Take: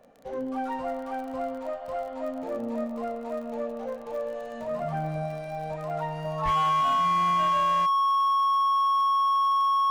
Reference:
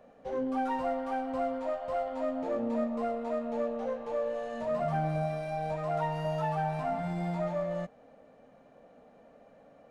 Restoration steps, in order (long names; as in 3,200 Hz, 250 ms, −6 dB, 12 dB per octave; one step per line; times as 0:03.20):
clipped peaks rebuilt −21 dBFS
click removal
notch filter 1,100 Hz, Q 30
0:06.44–0:06.56: high-pass filter 140 Hz 24 dB per octave